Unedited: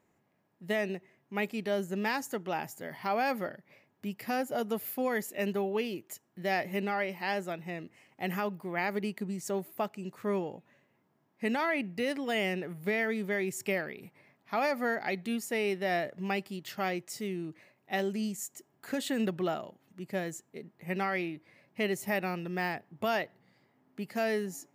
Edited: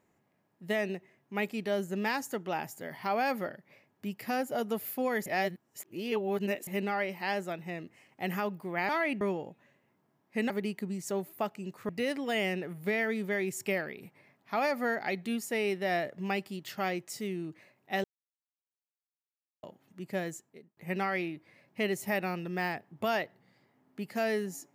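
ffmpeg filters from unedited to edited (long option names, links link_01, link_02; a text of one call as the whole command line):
ffmpeg -i in.wav -filter_complex "[0:a]asplit=10[link_01][link_02][link_03][link_04][link_05][link_06][link_07][link_08][link_09][link_10];[link_01]atrim=end=5.262[link_11];[link_02]atrim=start=5.258:end=6.672,asetpts=PTS-STARTPTS,areverse[link_12];[link_03]atrim=start=6.668:end=8.892[link_13];[link_04]atrim=start=11.568:end=11.892[link_14];[link_05]atrim=start=10.278:end=11.572[link_15];[link_06]atrim=start=8.888:end=10.282[link_16];[link_07]atrim=start=11.888:end=18.04,asetpts=PTS-STARTPTS,afade=type=out:start_time=6.148:duration=0.004:curve=hsin[link_17];[link_08]atrim=start=18.04:end=19.63,asetpts=PTS-STARTPTS,volume=0[link_18];[link_09]atrim=start=19.63:end=20.77,asetpts=PTS-STARTPTS,afade=type=in:duration=0.004:curve=hsin,afade=type=out:start_time=0.65:duration=0.49[link_19];[link_10]atrim=start=20.77,asetpts=PTS-STARTPTS,afade=type=in:duration=0.004:curve=hsin[link_20];[link_11][link_12]acrossfade=duration=0.004:curve1=hsin:curve2=hsin[link_21];[link_21][link_13]acrossfade=duration=0.004:curve1=hsin:curve2=hsin[link_22];[link_22][link_14]acrossfade=duration=0.004:curve1=hsin:curve2=hsin[link_23];[link_23][link_15]acrossfade=duration=0.004:curve1=hsin:curve2=hsin[link_24];[link_24][link_16]acrossfade=duration=0.004:curve1=hsin:curve2=hsin[link_25];[link_17][link_18][link_19][link_20]concat=n=4:v=0:a=1[link_26];[link_25][link_26]acrossfade=duration=0.004:curve1=hsin:curve2=hsin" out.wav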